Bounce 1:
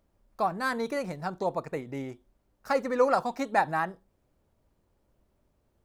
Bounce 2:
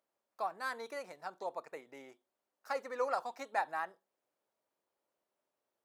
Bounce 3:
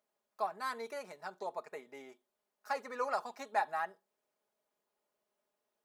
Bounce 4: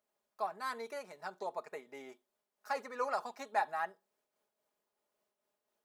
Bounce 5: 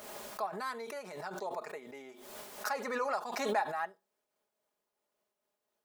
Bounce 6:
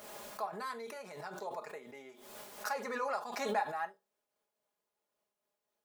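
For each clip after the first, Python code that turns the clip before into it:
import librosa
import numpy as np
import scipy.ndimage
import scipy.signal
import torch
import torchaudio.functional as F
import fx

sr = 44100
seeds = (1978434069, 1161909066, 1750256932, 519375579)

y1 = scipy.signal.sosfilt(scipy.signal.butter(2, 530.0, 'highpass', fs=sr, output='sos'), x)
y1 = y1 * 10.0 ** (-8.5 / 20.0)
y2 = y1 + 0.56 * np.pad(y1, (int(4.8 * sr / 1000.0), 0))[:len(y1)]
y3 = fx.am_noise(y2, sr, seeds[0], hz=5.7, depth_pct=60)
y3 = y3 * 10.0 ** (3.0 / 20.0)
y4 = fx.pre_swell(y3, sr, db_per_s=42.0)
y5 = fx.rev_gated(y4, sr, seeds[1], gate_ms=80, shape='falling', drr_db=8.5)
y5 = y5 * 10.0 ** (-3.0 / 20.0)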